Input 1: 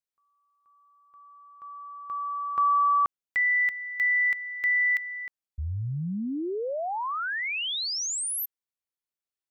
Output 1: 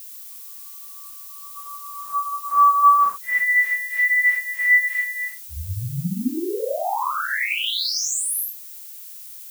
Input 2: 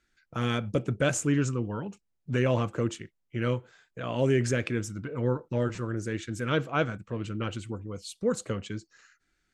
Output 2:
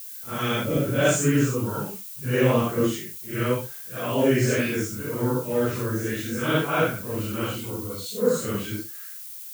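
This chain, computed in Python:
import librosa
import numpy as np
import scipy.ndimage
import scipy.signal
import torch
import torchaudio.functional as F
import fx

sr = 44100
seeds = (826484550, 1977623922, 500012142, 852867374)

y = fx.phase_scramble(x, sr, seeds[0], window_ms=200)
y = fx.highpass(y, sr, hz=120.0, slope=6)
y = fx.dmg_noise_colour(y, sr, seeds[1], colour='violet', level_db=-45.0)
y = F.gain(torch.from_numpy(y), 6.0).numpy()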